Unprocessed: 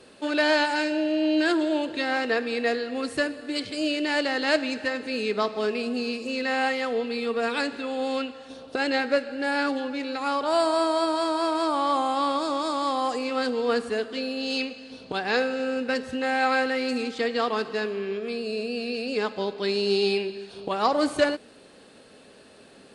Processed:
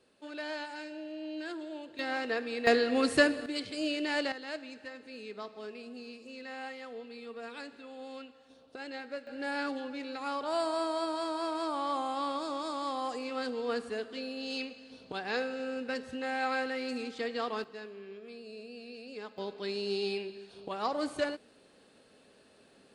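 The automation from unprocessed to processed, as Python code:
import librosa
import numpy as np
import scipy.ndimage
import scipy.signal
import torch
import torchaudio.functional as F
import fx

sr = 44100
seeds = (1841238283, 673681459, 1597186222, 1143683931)

y = fx.gain(x, sr, db=fx.steps((0.0, -17.0), (1.99, -8.0), (2.67, 2.0), (3.46, -6.5), (4.32, -17.0), (9.27, -9.0), (17.64, -16.5), (19.38, -10.0)))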